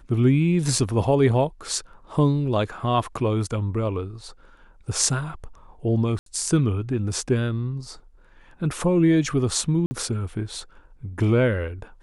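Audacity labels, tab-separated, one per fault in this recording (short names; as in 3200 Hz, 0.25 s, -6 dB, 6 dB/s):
0.780000	0.780000	gap 3.1 ms
6.190000	6.260000	gap 73 ms
9.860000	9.910000	gap 50 ms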